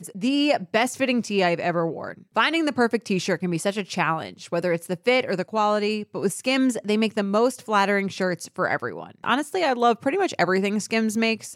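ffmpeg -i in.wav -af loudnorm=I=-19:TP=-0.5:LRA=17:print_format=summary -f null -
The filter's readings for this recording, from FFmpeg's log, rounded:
Input Integrated:    -23.3 LUFS
Input True Peak:      -6.9 dBTP
Input LRA:             1.3 LU
Input Threshold:     -33.4 LUFS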